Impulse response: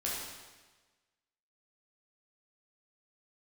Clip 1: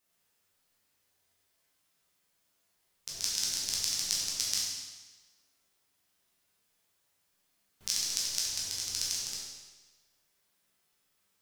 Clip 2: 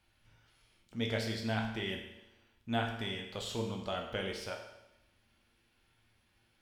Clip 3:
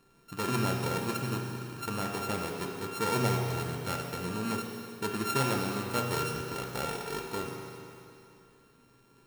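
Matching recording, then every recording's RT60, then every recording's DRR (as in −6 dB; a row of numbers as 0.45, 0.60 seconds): 1; 1.3, 0.90, 2.7 seconds; −6.0, 1.0, 0.0 decibels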